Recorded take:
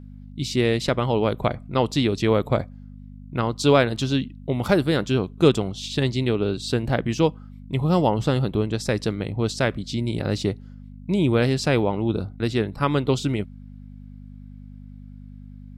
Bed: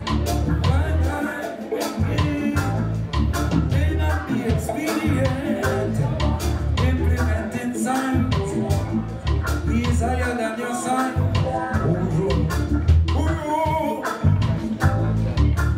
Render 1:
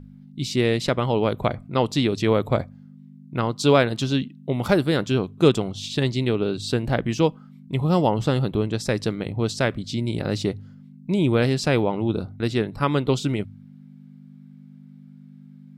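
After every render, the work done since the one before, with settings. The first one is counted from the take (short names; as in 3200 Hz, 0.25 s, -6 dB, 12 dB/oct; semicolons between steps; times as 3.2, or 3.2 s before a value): de-hum 50 Hz, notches 2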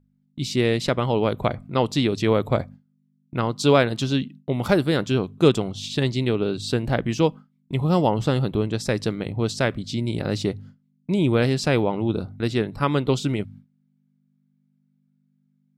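gate with hold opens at -34 dBFS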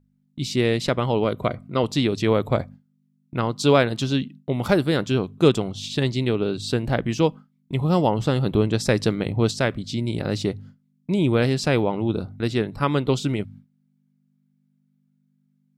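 1.24–1.84 notch comb 850 Hz; 8.46–9.51 gain +3.5 dB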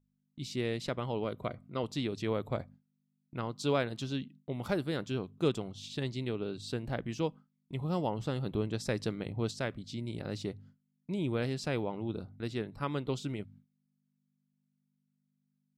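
gain -13 dB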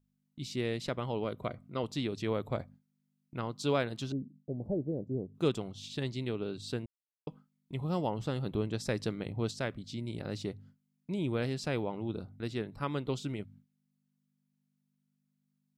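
4.12–5.35 inverse Chebyshev low-pass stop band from 1200 Hz; 6.86–7.27 mute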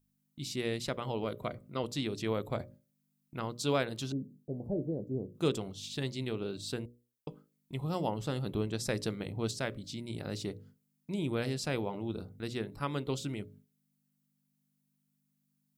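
high shelf 7600 Hz +11.5 dB; notches 60/120/180/240/300/360/420/480/540/600 Hz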